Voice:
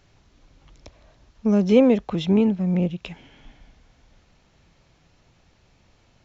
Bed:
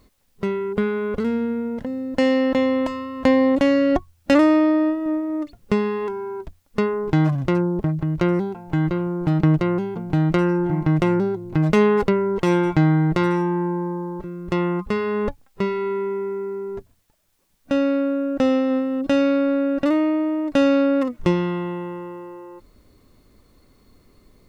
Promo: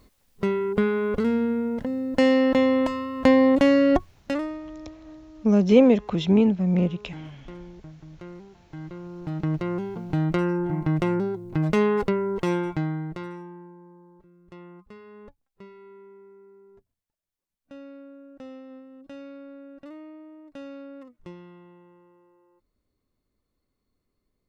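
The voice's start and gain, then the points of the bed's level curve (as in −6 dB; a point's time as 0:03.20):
4.00 s, 0.0 dB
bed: 0:04.02 −0.5 dB
0:04.63 −22 dB
0:08.42 −22 dB
0:09.87 −5 dB
0:12.42 −5 dB
0:13.76 −23.5 dB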